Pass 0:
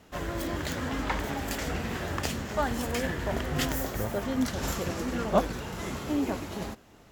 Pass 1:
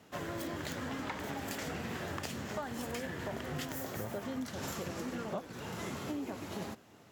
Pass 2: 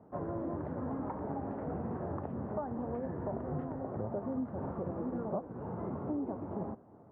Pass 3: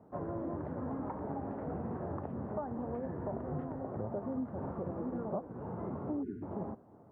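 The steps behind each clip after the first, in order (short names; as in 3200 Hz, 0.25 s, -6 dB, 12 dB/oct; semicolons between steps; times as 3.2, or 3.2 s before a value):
HPF 90 Hz 24 dB/oct; compressor 12:1, threshold -32 dBFS, peak gain reduction 15.5 dB; gain -3 dB
LPF 1000 Hz 24 dB/oct; gain +3 dB
spectral delete 6.23–6.43, 440–1400 Hz; gain -1 dB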